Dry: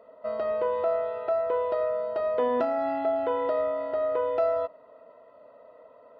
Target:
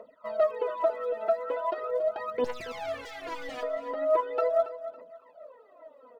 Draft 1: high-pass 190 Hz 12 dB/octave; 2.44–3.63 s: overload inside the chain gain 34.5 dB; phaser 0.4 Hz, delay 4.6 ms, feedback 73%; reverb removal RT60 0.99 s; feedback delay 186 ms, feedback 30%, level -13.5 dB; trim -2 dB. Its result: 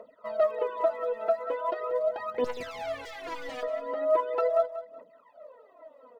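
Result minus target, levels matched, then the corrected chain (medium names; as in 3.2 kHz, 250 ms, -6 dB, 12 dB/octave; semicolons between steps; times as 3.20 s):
echo 92 ms early
high-pass 190 Hz 12 dB/octave; 2.44–3.63 s: overload inside the chain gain 34.5 dB; phaser 0.4 Hz, delay 4.6 ms, feedback 73%; reverb removal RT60 0.99 s; feedback delay 278 ms, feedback 30%, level -13.5 dB; trim -2 dB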